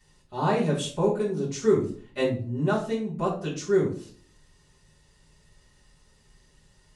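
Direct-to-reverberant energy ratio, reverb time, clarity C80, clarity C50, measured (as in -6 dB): -10.0 dB, 0.50 s, 12.0 dB, 7.0 dB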